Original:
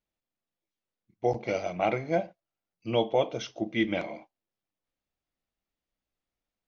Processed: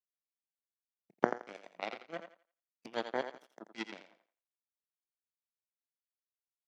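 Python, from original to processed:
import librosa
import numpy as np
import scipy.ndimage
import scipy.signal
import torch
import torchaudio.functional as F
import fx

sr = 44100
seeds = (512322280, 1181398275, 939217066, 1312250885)

y = fx.recorder_agc(x, sr, target_db=-22.0, rise_db_per_s=45.0, max_gain_db=30)
y = fx.power_curve(y, sr, exponent=3.0)
y = scipy.signal.sosfilt(scipy.signal.butter(4, 180.0, 'highpass', fs=sr, output='sos'), y)
y = fx.echo_thinned(y, sr, ms=85, feedback_pct=26, hz=350.0, wet_db=-8.5)
y = y * 10.0 ** (4.5 / 20.0)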